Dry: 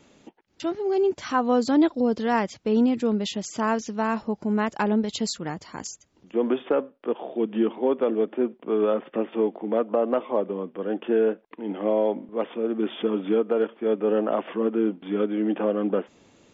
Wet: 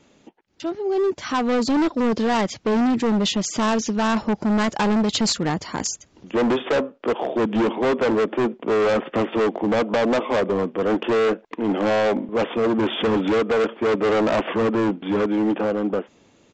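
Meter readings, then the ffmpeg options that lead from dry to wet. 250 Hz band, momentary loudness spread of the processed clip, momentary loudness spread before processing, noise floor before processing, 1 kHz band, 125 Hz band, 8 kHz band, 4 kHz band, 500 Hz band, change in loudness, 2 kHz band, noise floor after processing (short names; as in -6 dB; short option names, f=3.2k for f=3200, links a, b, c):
+3.5 dB, 5 LU, 8 LU, -61 dBFS, +5.0 dB, +7.5 dB, n/a, +9.5 dB, +3.0 dB, +3.5 dB, +8.0 dB, -57 dBFS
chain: -af "dynaudnorm=f=230:g=13:m=15.5dB,aresample=16000,asoftclip=type=hard:threshold=-17dB,aresample=44100"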